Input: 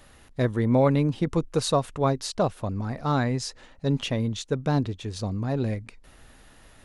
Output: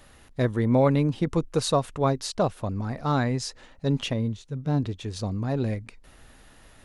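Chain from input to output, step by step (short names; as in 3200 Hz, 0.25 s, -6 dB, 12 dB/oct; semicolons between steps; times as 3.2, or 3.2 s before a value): 4.13–4.83 harmonic-percussive split percussive -15 dB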